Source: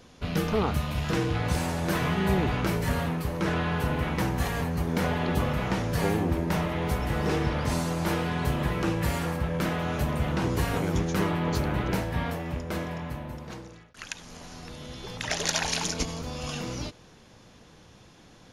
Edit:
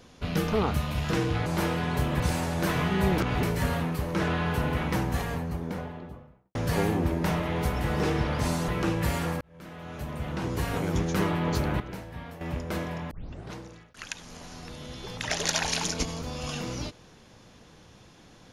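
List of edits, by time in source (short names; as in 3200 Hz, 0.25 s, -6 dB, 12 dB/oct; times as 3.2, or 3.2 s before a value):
2.44–2.69 reverse
4.08–5.81 studio fade out
7.94–8.68 move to 1.46
9.41–11.07 fade in
11.8–12.41 gain -11 dB
13.11 tape start 0.44 s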